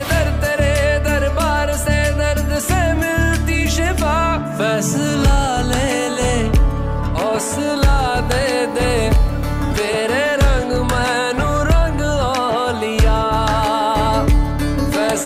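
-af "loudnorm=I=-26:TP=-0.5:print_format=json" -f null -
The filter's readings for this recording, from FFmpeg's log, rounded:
"input_i" : "-17.2",
"input_tp" : "-4.2",
"input_lra" : "0.4",
"input_thresh" : "-27.2",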